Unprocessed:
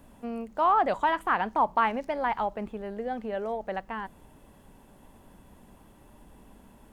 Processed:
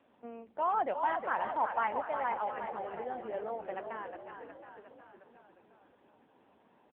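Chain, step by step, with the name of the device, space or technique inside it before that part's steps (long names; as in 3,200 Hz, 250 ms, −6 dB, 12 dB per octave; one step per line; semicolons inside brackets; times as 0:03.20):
0:00.59–0:02.01: notch filter 1,200 Hz, Q 7.8
echo with shifted repeats 360 ms, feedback 60%, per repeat −45 Hz, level −6 dB
satellite phone (band-pass filter 320–3,200 Hz; single-tap delay 503 ms −17 dB; level −5.5 dB; AMR narrowband 6.7 kbit/s 8,000 Hz)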